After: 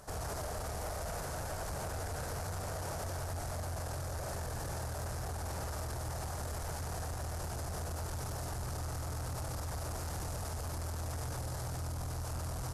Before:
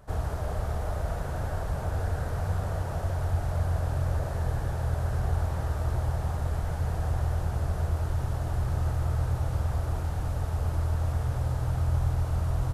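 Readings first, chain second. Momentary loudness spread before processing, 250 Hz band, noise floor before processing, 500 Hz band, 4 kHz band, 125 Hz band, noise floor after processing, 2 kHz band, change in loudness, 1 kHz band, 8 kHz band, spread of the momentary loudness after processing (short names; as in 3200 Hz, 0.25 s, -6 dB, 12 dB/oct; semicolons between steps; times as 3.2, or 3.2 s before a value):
3 LU, -7.5 dB, -33 dBFS, -5.5 dB, +2.0 dB, -12.0 dB, -40 dBFS, -3.5 dB, -9.5 dB, -4.5 dB, +6.0 dB, 0 LU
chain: low shelf 190 Hz -9 dB; limiter -30.5 dBFS, peak gain reduction 9 dB; soft clip -38 dBFS, distortion -13 dB; band shelf 7500 Hz +10 dB; gain +3 dB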